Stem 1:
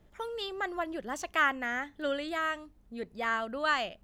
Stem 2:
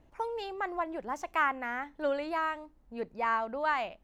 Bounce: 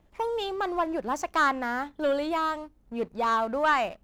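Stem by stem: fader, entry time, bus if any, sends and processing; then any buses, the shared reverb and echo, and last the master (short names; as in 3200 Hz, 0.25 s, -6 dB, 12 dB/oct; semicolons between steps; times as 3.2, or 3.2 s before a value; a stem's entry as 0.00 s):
-2.5 dB, 0.00 s, no send, dry
-2.0 dB, 0.00 s, no send, sample leveller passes 2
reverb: off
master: dry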